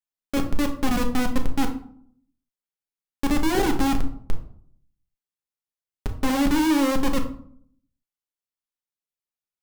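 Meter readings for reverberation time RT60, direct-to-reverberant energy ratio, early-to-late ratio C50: 0.60 s, 3.0 dB, 10.0 dB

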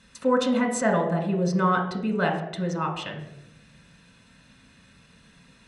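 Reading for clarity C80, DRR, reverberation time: 10.0 dB, 2.5 dB, 0.85 s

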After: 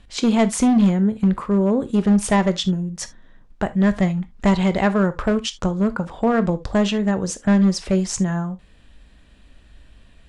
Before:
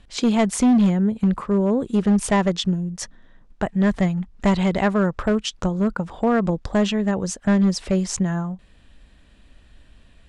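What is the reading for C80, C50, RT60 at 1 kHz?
27.5 dB, 17.5 dB, can't be measured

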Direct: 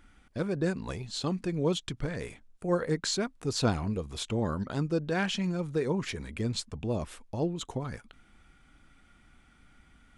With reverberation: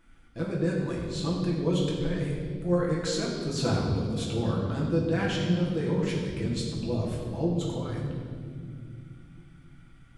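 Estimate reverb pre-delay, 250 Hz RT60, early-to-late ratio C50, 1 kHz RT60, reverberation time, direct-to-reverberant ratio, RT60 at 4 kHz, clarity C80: 6 ms, 4.2 s, 2.0 dB, 1.6 s, 2.2 s, −4.5 dB, 1.6 s, 3.5 dB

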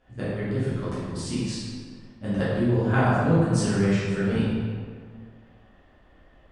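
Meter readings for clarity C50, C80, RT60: −3.0 dB, −0.5 dB, 1.9 s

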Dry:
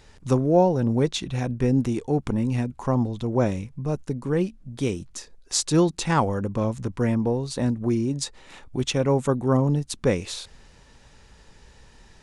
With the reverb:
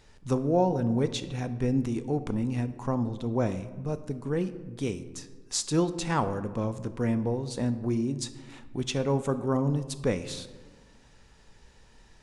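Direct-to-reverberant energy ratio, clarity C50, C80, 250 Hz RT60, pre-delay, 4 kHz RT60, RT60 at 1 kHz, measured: 11.0 dB, 13.5 dB, 15.0 dB, 1.9 s, 3 ms, 0.75 s, 1.3 s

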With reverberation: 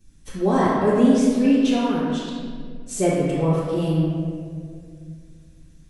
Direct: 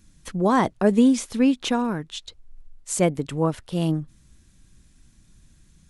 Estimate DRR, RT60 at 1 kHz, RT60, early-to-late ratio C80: −12.5 dB, 1.7 s, 2.1 s, −0.5 dB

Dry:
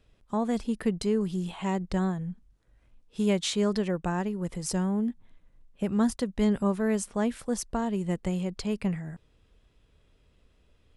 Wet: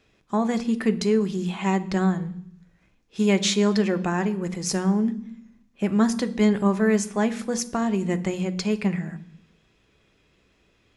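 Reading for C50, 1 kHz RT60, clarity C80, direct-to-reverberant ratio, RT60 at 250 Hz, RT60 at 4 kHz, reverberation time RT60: 17.0 dB, 0.65 s, 20.0 dB, 8.0 dB, 0.90 s, 0.85 s, 0.65 s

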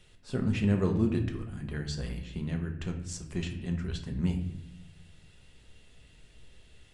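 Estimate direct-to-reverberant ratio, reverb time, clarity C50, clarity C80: 3.0 dB, 0.70 s, 9.0 dB, 12.0 dB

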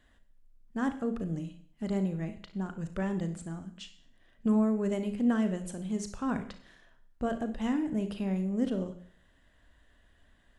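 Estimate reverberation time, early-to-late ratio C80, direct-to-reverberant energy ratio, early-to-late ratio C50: 0.55 s, 15.0 dB, 8.0 dB, 10.0 dB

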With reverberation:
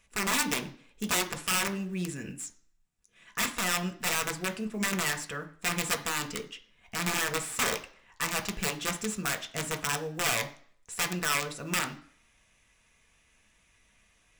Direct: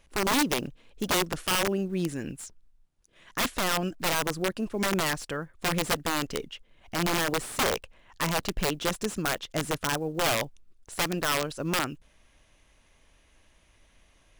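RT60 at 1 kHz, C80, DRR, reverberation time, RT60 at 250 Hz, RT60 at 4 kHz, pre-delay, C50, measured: 0.55 s, 18.5 dB, 3.5 dB, 0.55 s, 0.45 s, 0.50 s, 3 ms, 14.5 dB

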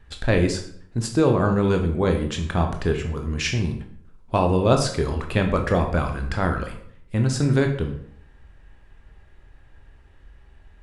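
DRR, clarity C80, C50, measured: 4.0 dB, 11.5 dB, 8.5 dB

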